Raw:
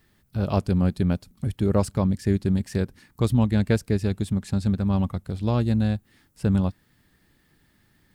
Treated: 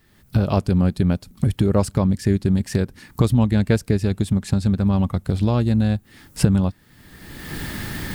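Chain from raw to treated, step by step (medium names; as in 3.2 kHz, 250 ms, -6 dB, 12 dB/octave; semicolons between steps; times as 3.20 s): recorder AGC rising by 33 dB/s; trim +3 dB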